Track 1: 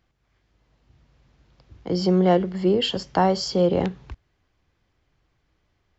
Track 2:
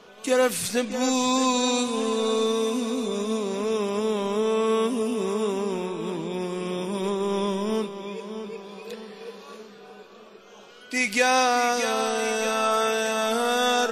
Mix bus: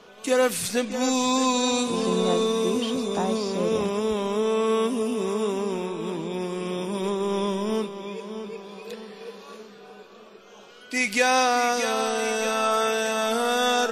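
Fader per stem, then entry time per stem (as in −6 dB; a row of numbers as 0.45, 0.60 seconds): −9.5, 0.0 decibels; 0.00, 0.00 seconds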